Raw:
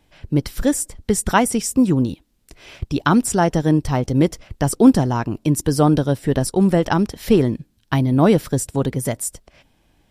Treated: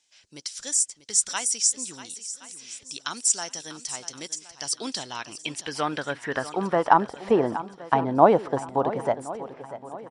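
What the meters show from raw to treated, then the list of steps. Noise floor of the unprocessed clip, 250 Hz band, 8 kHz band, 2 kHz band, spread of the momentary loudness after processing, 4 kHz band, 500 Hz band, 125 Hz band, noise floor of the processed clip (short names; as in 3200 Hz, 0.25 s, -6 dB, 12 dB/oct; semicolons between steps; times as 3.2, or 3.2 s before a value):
-62 dBFS, -15.0 dB, +2.0 dB, -5.0 dB, 16 LU, -0.5 dB, -5.0 dB, -19.0 dB, -55 dBFS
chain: downsampling 22050 Hz; band-pass sweep 6400 Hz -> 830 Hz, 4.4–7.12; swung echo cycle 1.069 s, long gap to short 1.5:1, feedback 34%, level -14 dB; gain +7.5 dB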